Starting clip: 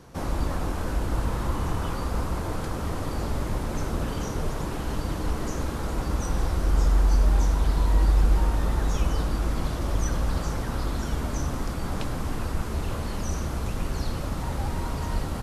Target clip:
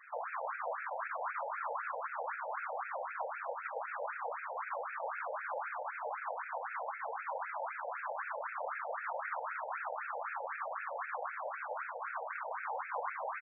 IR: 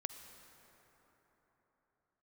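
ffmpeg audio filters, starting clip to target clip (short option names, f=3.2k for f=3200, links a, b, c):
-filter_complex "[0:a]afftfilt=real='hypot(re,im)*cos(2*PI*random(0))':imag='hypot(re,im)*sin(2*PI*random(1))':win_size=512:overlap=0.75,aecho=1:1:166|332|498|664|830|996|1162|1328:0.631|0.372|0.22|0.13|0.0765|0.0451|0.0266|0.0157,acrossover=split=150|2100[a][b][c];[c]acompressor=mode=upward:threshold=-59dB:ratio=2.5[d];[a][b][d]amix=inputs=3:normalize=0,highpass=f=190:t=q:w=0.5412,highpass=f=190:t=q:w=1.307,lowpass=f=3.5k:t=q:w=0.5176,lowpass=f=3.5k:t=q:w=0.7071,lowpass=f=3.5k:t=q:w=1.932,afreqshift=-71,bandreject=f=216.7:t=h:w=4,bandreject=f=433.4:t=h:w=4,bandreject=f=650.1:t=h:w=4,bandreject=f=866.8:t=h:w=4,bandreject=f=1.0835k:t=h:w=4,bandreject=f=1.3002k:t=h:w=4,bandreject=f=1.5169k:t=h:w=4,bandreject=f=1.7336k:t=h:w=4,bandreject=f=1.9503k:t=h:w=4,bandreject=f=2.167k:t=h:w=4,bandreject=f=2.3837k:t=h:w=4,bandreject=f=2.6004k:t=h:w=4,bandreject=f=2.8171k:t=h:w=4,bandreject=f=3.0338k:t=h:w=4,bandreject=f=3.2505k:t=h:w=4,bandreject=f=3.4672k:t=h:w=4,bandreject=f=3.6839k:t=h:w=4,bandreject=f=3.9006k:t=h:w=4,bandreject=f=4.1173k:t=h:w=4,bandreject=f=4.334k:t=h:w=4,bandreject=f=4.5507k:t=h:w=4,bandreject=f=4.7674k:t=h:w=4,bandreject=f=4.9841k:t=h:w=4,bandreject=f=5.2008k:t=h:w=4,bandreject=f=5.4175k:t=h:w=4,bandreject=f=5.6342k:t=h:w=4,bandreject=f=5.8509k:t=h:w=4,bandreject=f=6.0676k:t=h:w=4,bandreject=f=6.2843k:t=h:w=4,bandreject=f=6.501k:t=h:w=4,bandreject=f=6.7177k:t=h:w=4,asetrate=50715,aresample=44100,alimiter=level_in=11.5dB:limit=-24dB:level=0:latency=1:release=48,volume=-11.5dB,afftfilt=real='re*between(b*sr/1024,640*pow(1900/640,0.5+0.5*sin(2*PI*3.9*pts/sr))/1.41,640*pow(1900/640,0.5+0.5*sin(2*PI*3.9*pts/sr))*1.41)':imag='im*between(b*sr/1024,640*pow(1900/640,0.5+0.5*sin(2*PI*3.9*pts/sr))/1.41,640*pow(1900/640,0.5+0.5*sin(2*PI*3.9*pts/sr))*1.41)':win_size=1024:overlap=0.75,volume=11.5dB"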